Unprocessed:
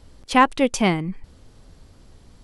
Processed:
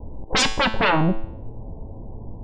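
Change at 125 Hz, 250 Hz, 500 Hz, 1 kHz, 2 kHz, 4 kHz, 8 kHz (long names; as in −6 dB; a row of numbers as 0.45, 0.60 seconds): +4.0, −3.0, −1.5, −3.0, +2.5, +7.5, +3.0 decibels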